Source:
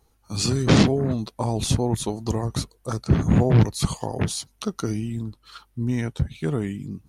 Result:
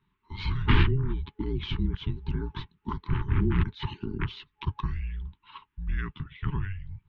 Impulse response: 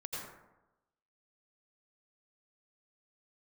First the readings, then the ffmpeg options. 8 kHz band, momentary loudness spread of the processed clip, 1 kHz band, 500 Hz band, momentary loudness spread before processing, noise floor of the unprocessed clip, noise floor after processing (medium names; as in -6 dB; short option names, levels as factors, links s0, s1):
under -35 dB, 13 LU, -6.5 dB, -13.5 dB, 13 LU, -63 dBFS, -76 dBFS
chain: -af "highpass=f=200:t=q:w=0.5412,highpass=f=200:t=q:w=1.307,lowpass=f=3400:t=q:w=0.5176,lowpass=f=3400:t=q:w=0.7071,lowpass=f=3400:t=q:w=1.932,afreqshift=-290,afftfilt=real='re*(1-between(b*sr/4096,420,850))':imag='im*(1-between(b*sr/4096,420,850))':win_size=4096:overlap=0.75,volume=0.891"